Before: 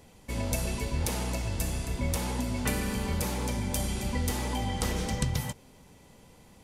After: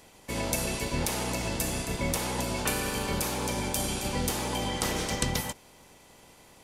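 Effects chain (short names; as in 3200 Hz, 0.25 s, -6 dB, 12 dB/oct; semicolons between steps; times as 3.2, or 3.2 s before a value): spectral limiter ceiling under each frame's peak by 14 dB; 2.42–4.71 notch 2000 Hz, Q 17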